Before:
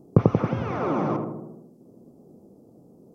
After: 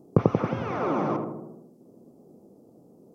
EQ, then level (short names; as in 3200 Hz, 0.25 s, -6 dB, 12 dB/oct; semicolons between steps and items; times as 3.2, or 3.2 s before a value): low shelf 140 Hz -8.5 dB; 0.0 dB